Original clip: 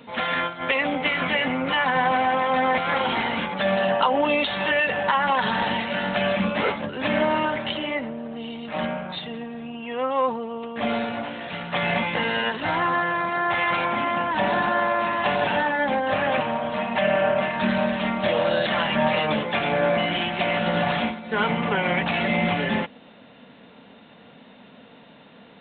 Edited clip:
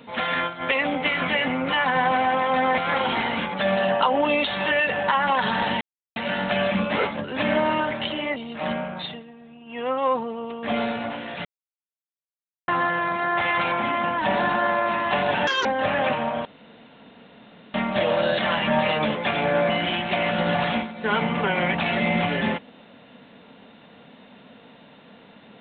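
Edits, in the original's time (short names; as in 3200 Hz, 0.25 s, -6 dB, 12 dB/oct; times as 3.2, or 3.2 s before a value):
5.81 insert silence 0.35 s
8.01–8.49 cut
9.23–9.91 dip -11 dB, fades 0.13 s
11.58–12.81 mute
15.6–15.93 speed 182%
16.73–18.02 room tone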